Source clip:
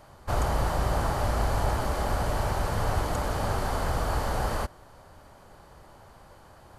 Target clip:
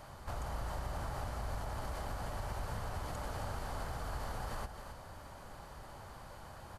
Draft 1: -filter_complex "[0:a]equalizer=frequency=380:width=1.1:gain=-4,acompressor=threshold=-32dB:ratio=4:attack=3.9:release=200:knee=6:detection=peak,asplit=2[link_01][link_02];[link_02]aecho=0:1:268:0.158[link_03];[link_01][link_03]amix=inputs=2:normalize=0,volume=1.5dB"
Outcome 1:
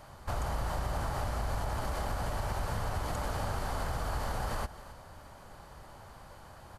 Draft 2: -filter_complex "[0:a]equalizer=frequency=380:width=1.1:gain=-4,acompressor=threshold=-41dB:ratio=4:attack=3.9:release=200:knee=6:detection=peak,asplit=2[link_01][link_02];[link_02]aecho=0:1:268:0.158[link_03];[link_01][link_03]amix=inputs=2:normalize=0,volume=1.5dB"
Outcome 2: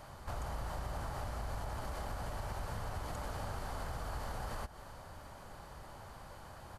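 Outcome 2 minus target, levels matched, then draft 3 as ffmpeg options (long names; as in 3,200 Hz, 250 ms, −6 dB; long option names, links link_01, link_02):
echo-to-direct −7.5 dB
-filter_complex "[0:a]equalizer=frequency=380:width=1.1:gain=-4,acompressor=threshold=-41dB:ratio=4:attack=3.9:release=200:knee=6:detection=peak,asplit=2[link_01][link_02];[link_02]aecho=0:1:268:0.376[link_03];[link_01][link_03]amix=inputs=2:normalize=0,volume=1.5dB"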